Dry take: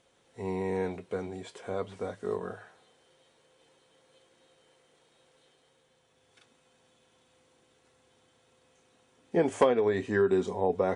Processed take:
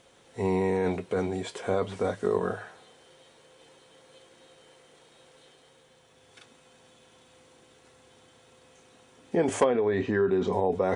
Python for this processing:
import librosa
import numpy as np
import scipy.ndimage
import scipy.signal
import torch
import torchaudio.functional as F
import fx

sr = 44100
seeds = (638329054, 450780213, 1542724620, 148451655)

p1 = fx.over_compress(x, sr, threshold_db=-33.0, ratio=-0.5)
p2 = x + F.gain(torch.from_numpy(p1), -0.5).numpy()
y = fx.air_absorb(p2, sr, metres=160.0, at=(9.64, 10.53))